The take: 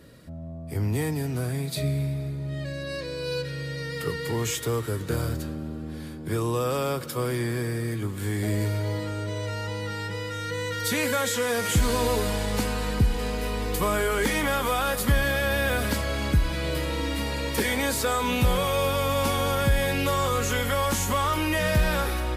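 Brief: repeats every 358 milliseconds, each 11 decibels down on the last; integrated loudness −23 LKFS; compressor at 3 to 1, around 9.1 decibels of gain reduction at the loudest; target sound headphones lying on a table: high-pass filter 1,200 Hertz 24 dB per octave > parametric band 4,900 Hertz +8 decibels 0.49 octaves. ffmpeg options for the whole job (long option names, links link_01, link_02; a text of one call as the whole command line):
ffmpeg -i in.wav -af "acompressor=threshold=-29dB:ratio=3,highpass=frequency=1200:width=0.5412,highpass=frequency=1200:width=1.3066,equalizer=frequency=4900:width_type=o:width=0.49:gain=8,aecho=1:1:358|716|1074:0.282|0.0789|0.0221,volume=11.5dB" out.wav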